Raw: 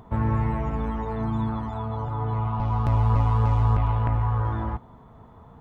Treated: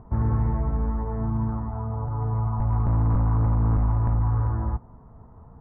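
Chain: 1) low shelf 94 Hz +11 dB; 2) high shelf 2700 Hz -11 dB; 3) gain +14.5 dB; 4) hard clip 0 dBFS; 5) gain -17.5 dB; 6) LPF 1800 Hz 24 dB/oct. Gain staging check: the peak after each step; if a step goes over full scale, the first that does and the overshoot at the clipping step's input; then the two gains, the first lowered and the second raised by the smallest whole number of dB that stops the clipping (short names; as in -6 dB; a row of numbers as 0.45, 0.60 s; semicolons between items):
-5.5, -5.5, +9.0, 0.0, -17.5, -17.0 dBFS; step 3, 9.0 dB; step 3 +5.5 dB, step 5 -8.5 dB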